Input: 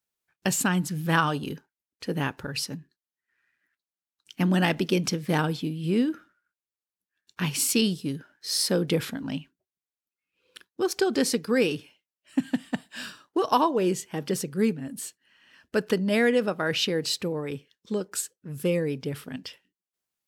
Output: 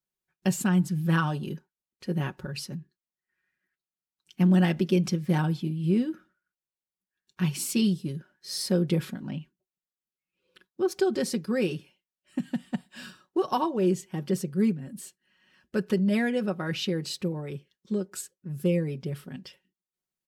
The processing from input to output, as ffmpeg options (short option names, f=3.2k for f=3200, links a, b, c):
-filter_complex "[0:a]asettb=1/sr,asplit=3[a][b][c];[a]atrim=end=9.174[d];[b]atrim=start=9.17:end=10.88,asetpts=PTS-STARTPTS,afade=t=in:d=0.004:c=qsin,afade=t=out:st=1.706:d=0.004:c=qsin,acrossover=split=3500[e][f];[f]acompressor=threshold=-55dB:ratio=4:attack=1:release=60[g];[e][g]amix=inputs=2:normalize=0[h];[c]atrim=start=10.876[i];[d][h]acrossfade=d=0.004:c1=hsin:c2=qsin[j];[j][i]acrossfade=d=0.004:c1=qsin:c2=hsin,lowshelf=f=400:g=9,aecho=1:1:5.4:0.65,volume=-8.5dB"